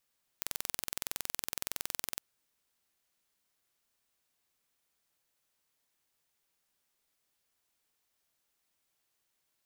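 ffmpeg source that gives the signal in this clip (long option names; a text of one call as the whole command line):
ffmpeg -f lavfi -i "aevalsrc='0.447*eq(mod(n,2042),0)':duration=1.76:sample_rate=44100" out.wav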